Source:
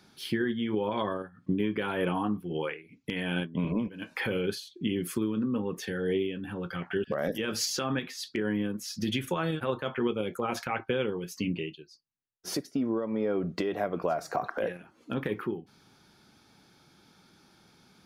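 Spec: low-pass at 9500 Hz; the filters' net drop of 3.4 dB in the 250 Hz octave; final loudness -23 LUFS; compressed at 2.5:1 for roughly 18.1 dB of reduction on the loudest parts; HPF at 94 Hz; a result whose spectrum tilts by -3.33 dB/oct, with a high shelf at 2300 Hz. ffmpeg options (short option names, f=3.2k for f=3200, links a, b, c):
-af "highpass=94,lowpass=9.5k,equalizer=f=250:t=o:g=-4.5,highshelf=f=2.3k:g=9,acompressor=threshold=-49dB:ratio=2.5,volume=22.5dB"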